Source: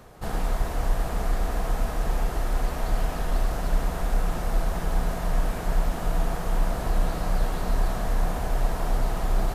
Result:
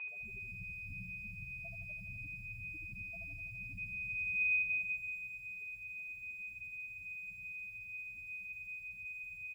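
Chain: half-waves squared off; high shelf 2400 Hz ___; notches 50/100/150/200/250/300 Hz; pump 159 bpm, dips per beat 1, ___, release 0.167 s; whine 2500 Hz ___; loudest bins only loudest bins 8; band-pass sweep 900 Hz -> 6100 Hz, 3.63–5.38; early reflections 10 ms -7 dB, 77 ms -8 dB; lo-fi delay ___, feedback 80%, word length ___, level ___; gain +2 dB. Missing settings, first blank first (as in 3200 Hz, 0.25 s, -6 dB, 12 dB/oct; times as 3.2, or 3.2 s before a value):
-11.5 dB, -11 dB, -29 dBFS, 83 ms, 11-bit, -12 dB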